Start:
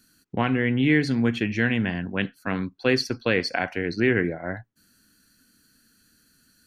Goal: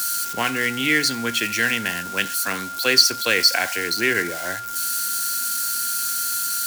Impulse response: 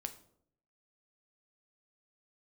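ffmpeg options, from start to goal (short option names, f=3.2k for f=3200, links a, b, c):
-filter_complex "[0:a]aeval=exprs='val(0)+0.5*0.0158*sgn(val(0))':c=same,equalizer=f=64:t=o:w=0.54:g=8.5,acrossover=split=190|1100[a][b][c];[c]acontrast=58[d];[a][b][d]amix=inputs=3:normalize=0,aeval=exprs='val(0)+0.0355*sin(2*PI*1400*n/s)':c=same,bass=f=250:g=-11,treble=f=4k:g=15,volume=-1.5dB"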